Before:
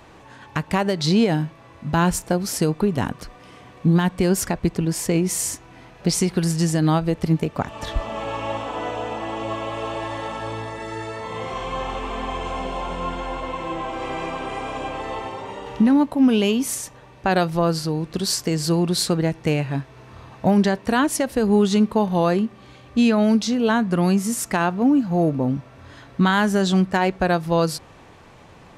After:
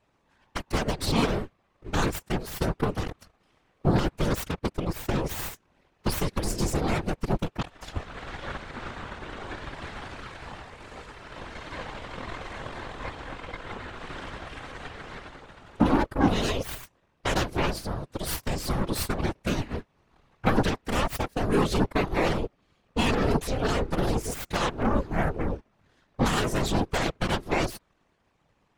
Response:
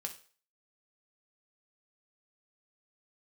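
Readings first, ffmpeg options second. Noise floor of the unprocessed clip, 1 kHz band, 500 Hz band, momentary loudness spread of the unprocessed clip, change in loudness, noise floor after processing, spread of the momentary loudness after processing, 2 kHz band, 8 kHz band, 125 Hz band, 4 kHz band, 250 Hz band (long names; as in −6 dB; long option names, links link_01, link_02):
−47 dBFS, −6.0 dB, −7.0 dB, 12 LU, −7.0 dB, −69 dBFS, 15 LU, −4.5 dB, −10.0 dB, −6.5 dB, −5.5 dB, −10.0 dB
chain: -af "aeval=exprs='0.376*(cos(1*acos(clip(val(0)/0.376,-1,1)))-cos(1*PI/2))+0.119*(cos(3*acos(clip(val(0)/0.376,-1,1)))-cos(3*PI/2))+0.00422*(cos(5*acos(clip(val(0)/0.376,-1,1)))-cos(5*PI/2))+0.075*(cos(6*acos(clip(val(0)/0.376,-1,1)))-cos(6*PI/2))':channel_layout=same,afftfilt=real='hypot(re,im)*cos(2*PI*random(0))':imag='hypot(re,im)*sin(2*PI*random(1))':win_size=512:overlap=0.75,volume=1.5dB"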